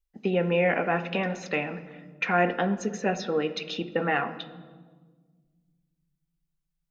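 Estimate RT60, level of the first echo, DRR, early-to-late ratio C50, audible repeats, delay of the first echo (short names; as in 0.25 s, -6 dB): 1.5 s, none, 10.0 dB, 12.5 dB, none, none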